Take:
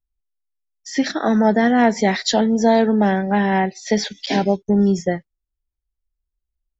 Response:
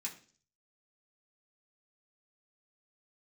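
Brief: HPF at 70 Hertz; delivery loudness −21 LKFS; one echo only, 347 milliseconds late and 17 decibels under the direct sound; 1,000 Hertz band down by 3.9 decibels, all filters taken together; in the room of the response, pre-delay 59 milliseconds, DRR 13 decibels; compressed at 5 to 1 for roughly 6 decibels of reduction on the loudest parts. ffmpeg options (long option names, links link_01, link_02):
-filter_complex "[0:a]highpass=70,equalizer=frequency=1000:width_type=o:gain=-6,acompressor=threshold=-19dB:ratio=5,aecho=1:1:347:0.141,asplit=2[link_01][link_02];[1:a]atrim=start_sample=2205,adelay=59[link_03];[link_02][link_03]afir=irnorm=-1:irlink=0,volume=-11.5dB[link_04];[link_01][link_04]amix=inputs=2:normalize=0,volume=2.5dB"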